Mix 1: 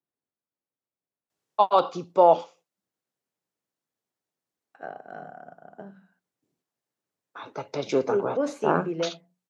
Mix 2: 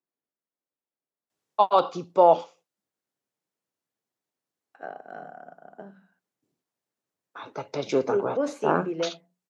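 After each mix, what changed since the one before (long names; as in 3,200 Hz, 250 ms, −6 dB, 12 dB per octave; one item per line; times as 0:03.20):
second voice: add high-pass filter 180 Hz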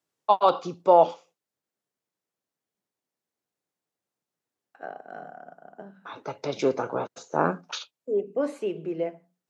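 first voice: entry −1.30 s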